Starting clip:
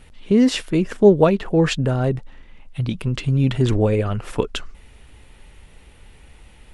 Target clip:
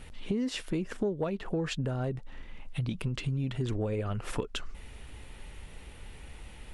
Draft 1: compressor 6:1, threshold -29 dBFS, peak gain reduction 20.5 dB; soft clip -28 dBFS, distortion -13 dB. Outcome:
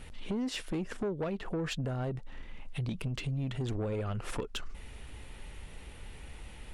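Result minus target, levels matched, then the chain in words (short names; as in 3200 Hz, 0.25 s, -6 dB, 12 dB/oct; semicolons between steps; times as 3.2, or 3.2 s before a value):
soft clip: distortion +15 dB
compressor 6:1, threshold -29 dBFS, peak gain reduction 20.5 dB; soft clip -17.5 dBFS, distortion -28 dB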